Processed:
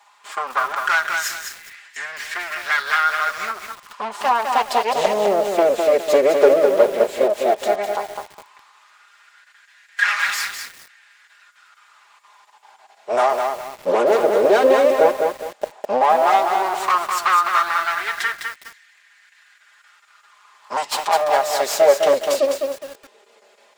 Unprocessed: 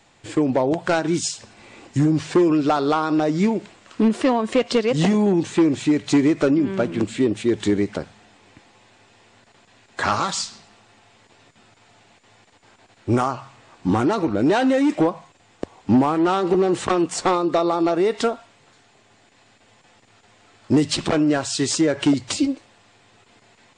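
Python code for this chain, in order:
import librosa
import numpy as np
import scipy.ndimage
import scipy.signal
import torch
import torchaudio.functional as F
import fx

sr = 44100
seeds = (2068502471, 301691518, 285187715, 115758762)

y = fx.lower_of_two(x, sr, delay_ms=4.9)
y = fx.filter_lfo_highpass(y, sr, shape='sine', hz=0.12, low_hz=480.0, high_hz=1800.0, q=4.5)
y = fx.echo_crushed(y, sr, ms=206, feedback_pct=35, bits=6, wet_db=-4.5)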